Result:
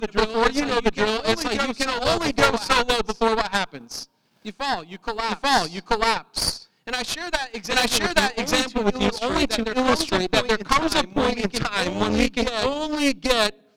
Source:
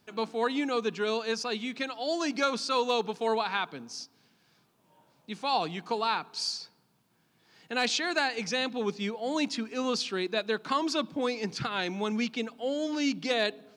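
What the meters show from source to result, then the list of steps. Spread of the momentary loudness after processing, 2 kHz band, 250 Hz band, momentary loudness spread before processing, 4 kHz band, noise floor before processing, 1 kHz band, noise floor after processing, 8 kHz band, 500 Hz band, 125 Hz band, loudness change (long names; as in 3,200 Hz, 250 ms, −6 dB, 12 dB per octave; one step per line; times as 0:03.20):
8 LU, +9.5 dB, +7.5 dB, 6 LU, +9.0 dB, −69 dBFS, +9.0 dB, −60 dBFS, +11.0 dB, +8.0 dB, +11.5 dB, +8.0 dB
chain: backwards echo 834 ms −5 dB
transient designer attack +4 dB, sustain −10 dB
harmonic generator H 4 −13 dB, 8 −19 dB, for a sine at −10.5 dBFS
level +6 dB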